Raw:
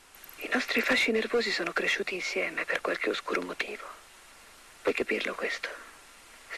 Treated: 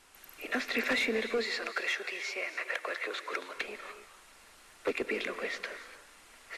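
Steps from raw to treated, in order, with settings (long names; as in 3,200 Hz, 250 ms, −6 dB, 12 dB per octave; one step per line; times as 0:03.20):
0:01.45–0:03.56: high-pass filter 560 Hz 12 dB per octave
reverb whose tail is shaped and stops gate 320 ms rising, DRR 10.5 dB
level −4.5 dB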